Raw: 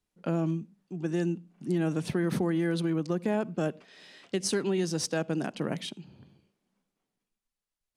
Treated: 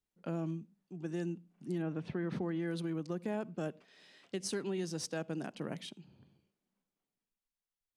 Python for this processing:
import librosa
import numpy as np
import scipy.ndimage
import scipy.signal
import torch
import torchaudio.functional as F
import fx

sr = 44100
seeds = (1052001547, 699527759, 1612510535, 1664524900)

y = fx.lowpass(x, sr, hz=fx.line((1.81, 2200.0), (2.66, 5400.0)), slope=12, at=(1.81, 2.66), fade=0.02)
y = F.gain(torch.from_numpy(y), -8.5).numpy()